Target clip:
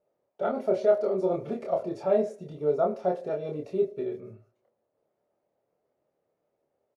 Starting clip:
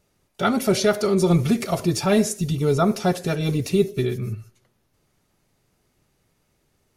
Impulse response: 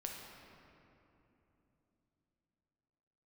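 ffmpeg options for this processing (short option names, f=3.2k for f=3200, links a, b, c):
-filter_complex "[0:a]bandpass=f=570:t=q:w=3.2:csg=0,asplit=2[a][b];[b]adelay=27,volume=-3dB[c];[a][c]amix=inputs=2:normalize=0"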